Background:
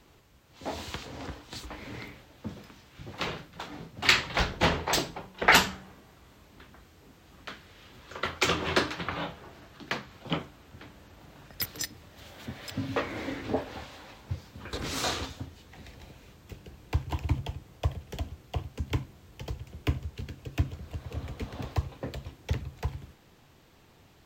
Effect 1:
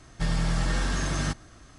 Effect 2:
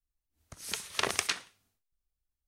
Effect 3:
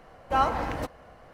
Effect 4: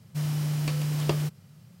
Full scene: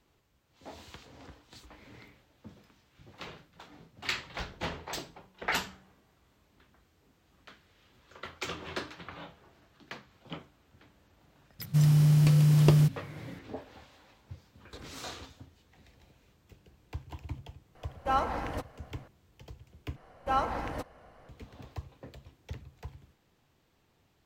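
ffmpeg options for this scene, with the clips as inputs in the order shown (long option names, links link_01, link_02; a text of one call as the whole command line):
ffmpeg -i bed.wav -i cue0.wav -i cue1.wav -i cue2.wav -i cue3.wav -filter_complex "[3:a]asplit=2[link_01][link_02];[0:a]volume=-11.5dB[link_03];[4:a]lowshelf=frequency=290:gain=9[link_04];[link_03]asplit=2[link_05][link_06];[link_05]atrim=end=19.964[link_07];[link_02]atrim=end=1.33,asetpts=PTS-STARTPTS,volume=-5dB[link_08];[link_06]atrim=start=21.286[link_09];[link_04]atrim=end=1.8,asetpts=PTS-STARTPTS,volume=-0.5dB,afade=type=in:duration=0.004:curve=hsin,afade=type=out:start_time=1.796:duration=0.004:curve=hsin,adelay=11590[link_10];[link_01]atrim=end=1.33,asetpts=PTS-STARTPTS,volume=-4.5dB,afade=type=in:duration=0.004:curve=hsin,afade=type=out:start_time=1.326:duration=0.004:curve=hsin,adelay=17750[link_11];[link_07][link_08]acrossfade=duration=0.004:curve1=hsin:curve2=hsin[link_12];[link_12][link_09]acrossfade=duration=0.004:curve1=hsin:curve2=hsin[link_13];[link_13][link_10][link_11]amix=inputs=3:normalize=0" out.wav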